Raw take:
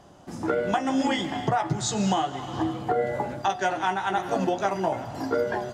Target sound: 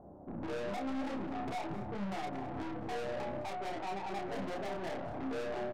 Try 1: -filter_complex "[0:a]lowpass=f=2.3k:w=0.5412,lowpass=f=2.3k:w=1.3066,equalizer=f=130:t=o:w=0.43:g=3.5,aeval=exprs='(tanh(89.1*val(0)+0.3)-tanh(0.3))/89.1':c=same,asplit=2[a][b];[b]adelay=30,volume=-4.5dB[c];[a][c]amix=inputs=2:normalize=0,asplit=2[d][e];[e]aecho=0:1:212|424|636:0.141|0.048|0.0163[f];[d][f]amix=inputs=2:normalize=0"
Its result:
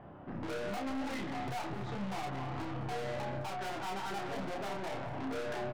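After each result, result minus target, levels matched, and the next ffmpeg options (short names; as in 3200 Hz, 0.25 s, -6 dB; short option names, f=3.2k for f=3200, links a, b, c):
125 Hz band +4.0 dB; 2000 Hz band +2.5 dB
-filter_complex "[0:a]lowpass=f=2.3k:w=0.5412,lowpass=f=2.3k:w=1.3066,equalizer=f=130:t=o:w=0.43:g=-8,aeval=exprs='(tanh(89.1*val(0)+0.3)-tanh(0.3))/89.1':c=same,asplit=2[a][b];[b]adelay=30,volume=-4.5dB[c];[a][c]amix=inputs=2:normalize=0,asplit=2[d][e];[e]aecho=0:1:212|424|636:0.141|0.048|0.0163[f];[d][f]amix=inputs=2:normalize=0"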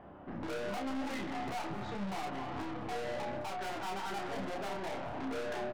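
2000 Hz band +2.5 dB
-filter_complex "[0:a]lowpass=f=790:w=0.5412,lowpass=f=790:w=1.3066,equalizer=f=130:t=o:w=0.43:g=-8,aeval=exprs='(tanh(89.1*val(0)+0.3)-tanh(0.3))/89.1':c=same,asplit=2[a][b];[b]adelay=30,volume=-4.5dB[c];[a][c]amix=inputs=2:normalize=0,asplit=2[d][e];[e]aecho=0:1:212|424|636:0.141|0.048|0.0163[f];[d][f]amix=inputs=2:normalize=0"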